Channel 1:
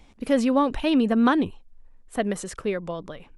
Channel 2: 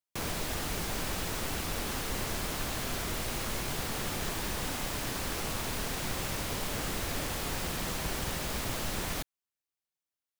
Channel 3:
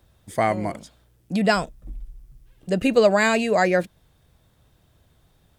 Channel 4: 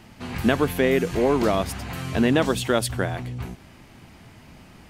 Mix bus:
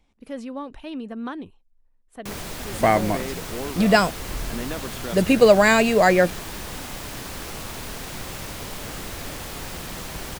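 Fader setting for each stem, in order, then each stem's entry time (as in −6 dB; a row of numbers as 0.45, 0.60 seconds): −12.5, +0.5, +3.0, −12.5 decibels; 0.00, 2.10, 2.45, 2.35 seconds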